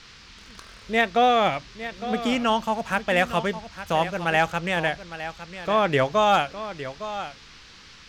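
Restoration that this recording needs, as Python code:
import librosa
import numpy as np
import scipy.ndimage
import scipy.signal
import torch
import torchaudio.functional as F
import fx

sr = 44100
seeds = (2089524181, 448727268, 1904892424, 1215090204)

y = fx.fix_declip(x, sr, threshold_db=-10.0)
y = fx.noise_reduce(y, sr, print_start_s=7.57, print_end_s=8.07, reduce_db=21.0)
y = fx.fix_echo_inverse(y, sr, delay_ms=859, level_db=-12.5)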